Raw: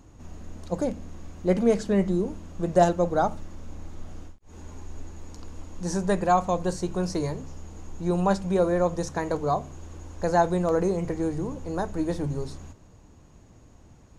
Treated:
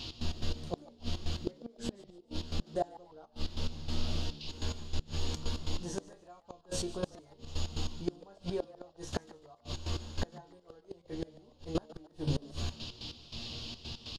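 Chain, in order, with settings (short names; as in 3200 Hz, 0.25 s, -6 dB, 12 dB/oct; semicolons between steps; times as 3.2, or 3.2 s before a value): dynamic EQ 370 Hz, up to +3 dB, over -33 dBFS, Q 1.1; compressor 2:1, threshold -33 dBFS, peak gain reduction 11 dB; resonator bank D#2 fifth, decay 0.23 s; band noise 2700–5100 Hz -61 dBFS; step gate "x.x.x..xxx" 143 bpm -12 dB; flipped gate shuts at -36 dBFS, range -32 dB; frequency-shifting echo 0.145 s, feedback 31%, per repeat +140 Hz, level -19.5 dB; gain +16 dB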